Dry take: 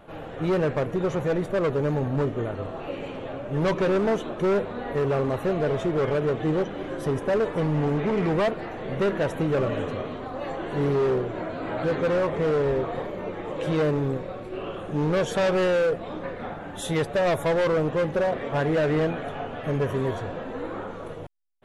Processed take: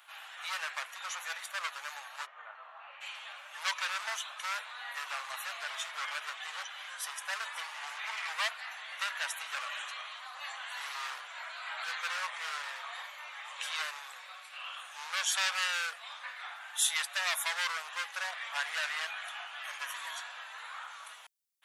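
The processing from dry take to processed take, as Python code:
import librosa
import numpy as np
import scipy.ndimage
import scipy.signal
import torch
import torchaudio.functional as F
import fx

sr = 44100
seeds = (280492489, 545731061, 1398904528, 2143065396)

y = fx.lowpass(x, sr, hz=1400.0, slope=12, at=(2.25, 3.0), fade=0.02)
y = scipy.signal.sosfilt(scipy.signal.bessel(8, 1600.0, 'highpass', norm='mag', fs=sr, output='sos'), y)
y = fx.high_shelf(y, sr, hz=3300.0, db=10.5)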